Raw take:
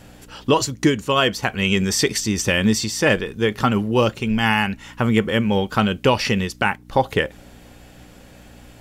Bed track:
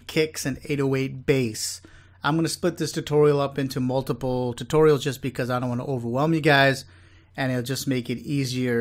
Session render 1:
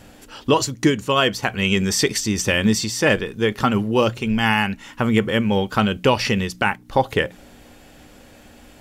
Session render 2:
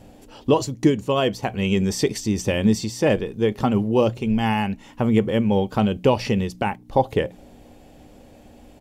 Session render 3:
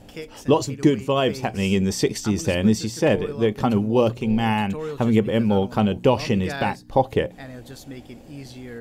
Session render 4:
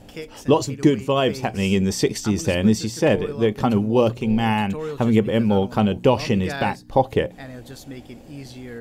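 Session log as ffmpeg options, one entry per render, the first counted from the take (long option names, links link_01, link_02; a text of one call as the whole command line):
ffmpeg -i in.wav -af "bandreject=frequency=60:width_type=h:width=4,bandreject=frequency=120:width_type=h:width=4,bandreject=frequency=180:width_type=h:width=4" out.wav
ffmpeg -i in.wav -af "firequalizer=gain_entry='entry(750,0);entry(1400,-12);entry(2300,-8)':delay=0.05:min_phase=1" out.wav
ffmpeg -i in.wav -i bed.wav -filter_complex "[1:a]volume=-13.5dB[link_01];[0:a][link_01]amix=inputs=2:normalize=0" out.wav
ffmpeg -i in.wav -af "volume=1dB" out.wav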